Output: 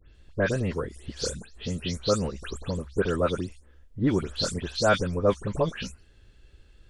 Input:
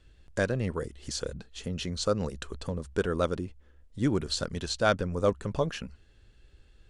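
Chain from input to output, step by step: delay that grows with frequency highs late, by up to 143 ms; trim +3 dB

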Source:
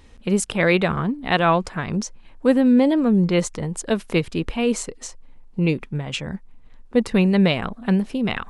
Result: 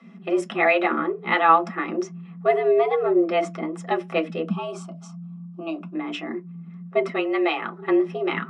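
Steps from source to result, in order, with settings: 4.47–5.95 s: static phaser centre 750 Hz, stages 4; 7.10–7.76 s: bass shelf 270 Hz -10 dB; frequency shift +160 Hz; distance through air 81 m; reverberation RT60 0.15 s, pre-delay 3 ms, DRR 2.5 dB; trim -8.5 dB

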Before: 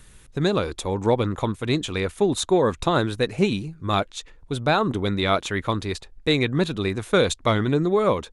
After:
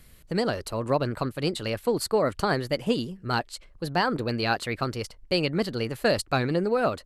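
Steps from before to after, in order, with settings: tape speed +18%; trim -4 dB

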